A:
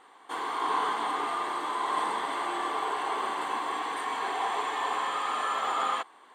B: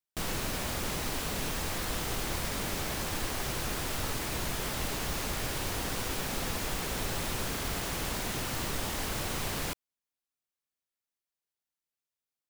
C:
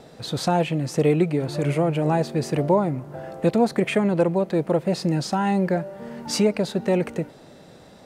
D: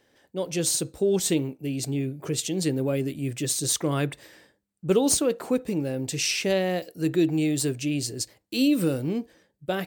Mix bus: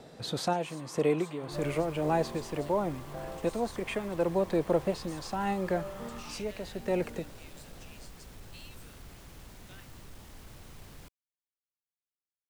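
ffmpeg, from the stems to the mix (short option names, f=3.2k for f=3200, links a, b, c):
-filter_complex "[0:a]acompressor=threshold=-45dB:ratio=1.5,adelay=350,volume=-15dB[a];[1:a]asoftclip=type=tanh:threshold=-29dB,lowshelf=f=220:g=9.5,adelay=1350,volume=-18dB[b];[2:a]acrossover=split=250[c][d];[c]acompressor=threshold=-32dB:ratio=6[e];[e][d]amix=inputs=2:normalize=0,volume=-4.5dB[f];[3:a]acrossover=split=3300[g][h];[h]acompressor=threshold=-33dB:ratio=4:attack=1:release=60[i];[g][i]amix=inputs=2:normalize=0,highpass=1.4k,volume=-18.5dB,asplit=2[j][k];[k]apad=whole_len=355309[l];[f][l]sidechaincompress=threshold=-58dB:ratio=8:attack=35:release=454[m];[a][b][m][j]amix=inputs=4:normalize=0"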